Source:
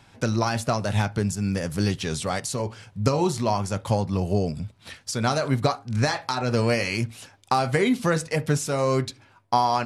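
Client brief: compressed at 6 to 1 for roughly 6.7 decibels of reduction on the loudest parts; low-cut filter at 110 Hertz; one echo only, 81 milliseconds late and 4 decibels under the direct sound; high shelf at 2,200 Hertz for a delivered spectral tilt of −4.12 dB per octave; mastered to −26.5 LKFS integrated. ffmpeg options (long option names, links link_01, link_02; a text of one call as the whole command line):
ffmpeg -i in.wav -af "highpass=110,highshelf=frequency=2200:gain=5.5,acompressor=threshold=-23dB:ratio=6,aecho=1:1:81:0.631,volume=0.5dB" out.wav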